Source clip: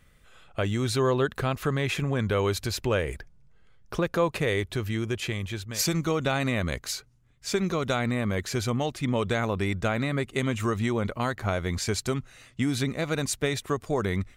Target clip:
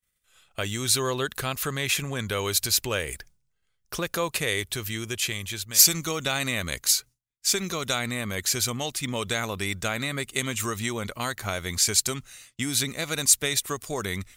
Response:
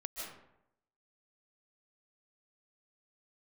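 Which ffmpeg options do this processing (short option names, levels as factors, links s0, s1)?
-af "agate=range=0.0224:threshold=0.00562:ratio=3:detection=peak,crystalizer=i=7.5:c=0,volume=0.531"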